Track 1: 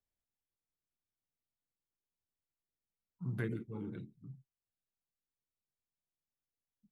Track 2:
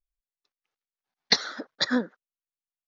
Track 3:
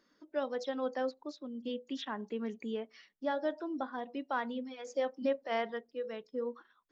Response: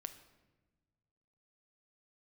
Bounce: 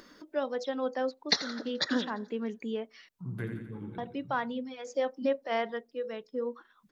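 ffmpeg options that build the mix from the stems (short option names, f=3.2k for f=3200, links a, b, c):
-filter_complex "[0:a]volume=0dB,asplit=2[a][b];[b]volume=-7dB[c];[1:a]volume=-5dB,asplit=2[d][e];[e]volume=-15.5dB[f];[2:a]volume=3dB,asplit=3[g][h][i];[g]atrim=end=3.09,asetpts=PTS-STARTPTS,afade=t=out:st=3.086:d=0.004:c=hsin[j];[h]atrim=start=3.09:end=3.98,asetpts=PTS-STARTPTS,volume=0[k];[i]atrim=start=3.98,asetpts=PTS-STARTPTS,afade=t=in:d=0.004:c=hsin[l];[j][k][l]concat=n=3:v=0:a=1[m];[c][f]amix=inputs=2:normalize=0,aecho=0:1:86|172|258|344|430|516|602|688:1|0.53|0.281|0.149|0.0789|0.0418|0.0222|0.0117[n];[a][d][m][n]amix=inputs=4:normalize=0,acompressor=mode=upward:threshold=-44dB:ratio=2.5"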